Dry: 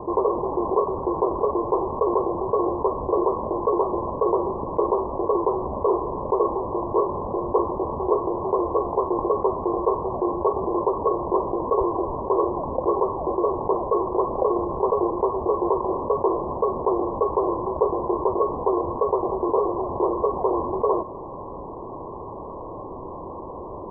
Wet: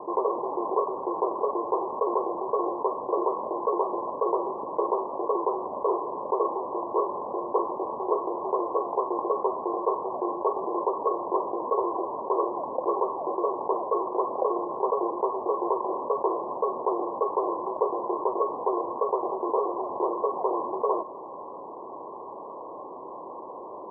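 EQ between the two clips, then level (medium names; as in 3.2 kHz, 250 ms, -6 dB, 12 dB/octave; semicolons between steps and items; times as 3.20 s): high-pass 270 Hz 12 dB/octave; low-pass 1 kHz 12 dB/octave; tilt shelf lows -7 dB, about 770 Hz; -1.0 dB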